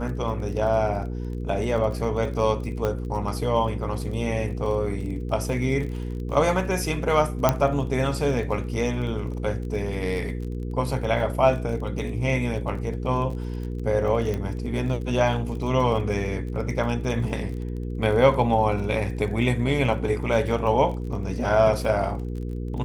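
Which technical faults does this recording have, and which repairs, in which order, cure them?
crackle 30/s -33 dBFS
hum 60 Hz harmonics 8 -30 dBFS
2.85 pop -13 dBFS
7.49 pop -4 dBFS
14.34 pop -17 dBFS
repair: de-click; de-hum 60 Hz, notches 8

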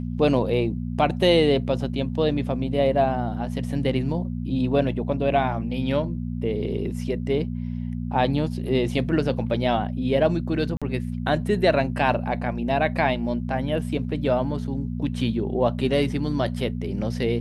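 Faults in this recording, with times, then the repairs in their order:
hum 60 Hz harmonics 4 -29 dBFS
10.77–10.82 gap 46 ms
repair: de-hum 60 Hz, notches 4; interpolate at 10.77, 46 ms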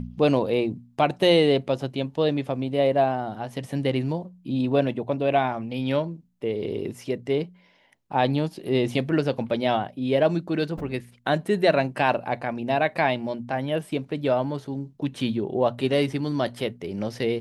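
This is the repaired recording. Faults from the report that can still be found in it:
none

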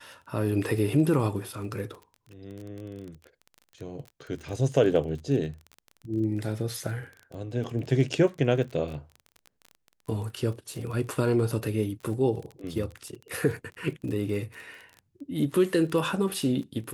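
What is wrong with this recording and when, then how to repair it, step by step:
crackle 25/s -35 dBFS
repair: de-click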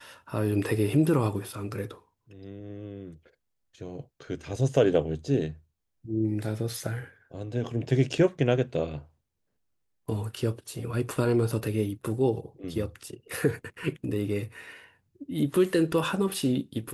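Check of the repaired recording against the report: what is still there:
none

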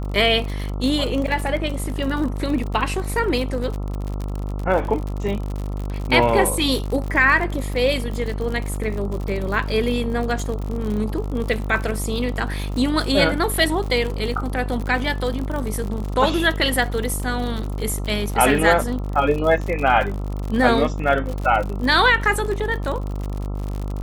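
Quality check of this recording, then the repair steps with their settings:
buzz 50 Hz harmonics 27 -26 dBFS
crackle 59/s -26 dBFS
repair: de-click; de-hum 50 Hz, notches 27

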